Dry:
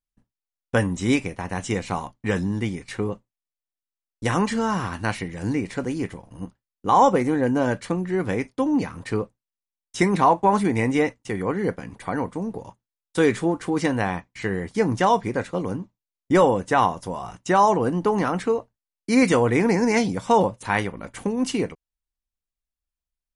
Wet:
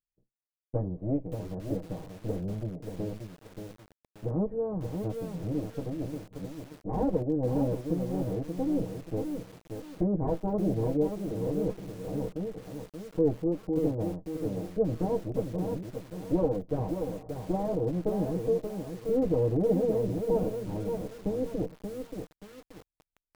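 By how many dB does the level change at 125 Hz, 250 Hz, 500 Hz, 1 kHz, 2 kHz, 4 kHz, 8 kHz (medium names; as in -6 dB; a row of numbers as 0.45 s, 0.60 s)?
-4.5 dB, -7.0 dB, -6.0 dB, -19.5 dB, under -25 dB, under -15 dB, under -15 dB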